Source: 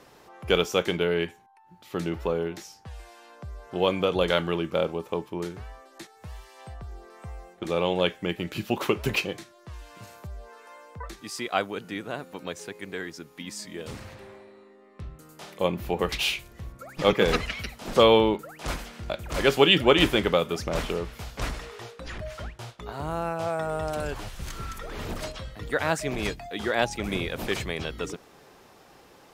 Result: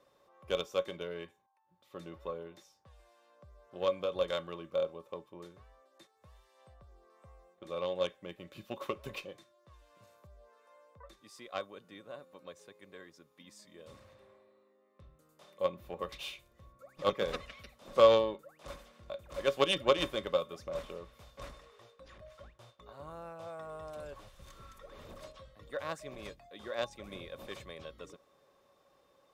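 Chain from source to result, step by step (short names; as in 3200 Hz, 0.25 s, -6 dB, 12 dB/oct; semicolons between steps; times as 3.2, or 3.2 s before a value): 21.53–22.44 half-wave gain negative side -3 dB; added harmonics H 3 -12 dB, 8 -44 dB, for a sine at -3.5 dBFS; in parallel at -12 dB: hard clip -20 dBFS, distortion -8 dB; on the sum: small resonant body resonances 560/1100/3600 Hz, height 16 dB, ringing for 75 ms; gain -8.5 dB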